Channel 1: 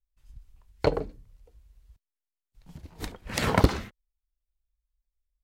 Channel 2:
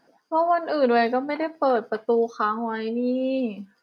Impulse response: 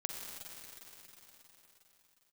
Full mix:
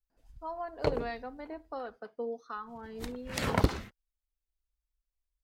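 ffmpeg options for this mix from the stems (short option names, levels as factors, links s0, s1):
-filter_complex "[0:a]volume=1.68,afade=t=out:st=1.45:d=0.38:silence=0.316228,afade=t=in:st=2.77:d=0.28:silence=0.316228[s0];[1:a]acrossover=split=850[s1][s2];[s1]aeval=exprs='val(0)*(1-0.5/2+0.5/2*cos(2*PI*1.4*n/s))':c=same[s3];[s2]aeval=exprs='val(0)*(1-0.5/2-0.5/2*cos(2*PI*1.4*n/s))':c=same[s4];[s3][s4]amix=inputs=2:normalize=0,adelay=100,volume=0.178[s5];[s0][s5]amix=inputs=2:normalize=0"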